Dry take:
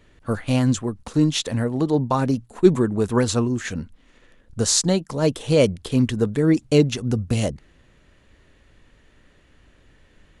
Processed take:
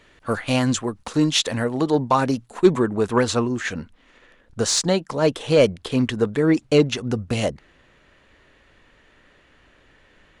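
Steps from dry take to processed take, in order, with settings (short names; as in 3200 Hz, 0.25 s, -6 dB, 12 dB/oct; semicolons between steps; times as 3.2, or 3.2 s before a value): overdrive pedal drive 11 dB, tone 6200 Hz, clips at -2 dBFS, from 2.67 s tone 2700 Hz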